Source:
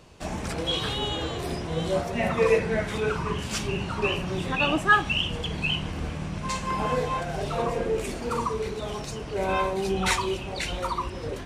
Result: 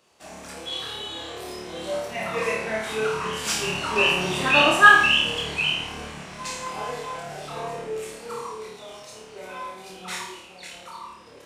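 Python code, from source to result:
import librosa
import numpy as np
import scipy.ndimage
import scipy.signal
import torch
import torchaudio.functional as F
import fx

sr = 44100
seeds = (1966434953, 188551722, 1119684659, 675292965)

p1 = fx.doppler_pass(x, sr, speed_mps=6, closest_m=5.2, pass_at_s=4.45)
p2 = fx.highpass(p1, sr, hz=540.0, slope=6)
p3 = fx.high_shelf(p2, sr, hz=7600.0, db=5.5)
p4 = p3 + fx.room_flutter(p3, sr, wall_m=4.7, rt60_s=0.65, dry=0)
y = p4 * 10.0 ** (5.5 / 20.0)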